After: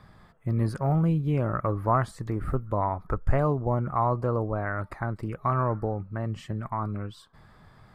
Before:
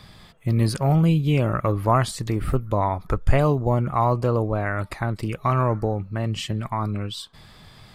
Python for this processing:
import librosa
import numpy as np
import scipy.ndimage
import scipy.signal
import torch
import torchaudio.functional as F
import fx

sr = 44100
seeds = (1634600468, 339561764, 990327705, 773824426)

y = fx.high_shelf_res(x, sr, hz=2100.0, db=-10.0, q=1.5)
y = y * 10.0 ** (-5.5 / 20.0)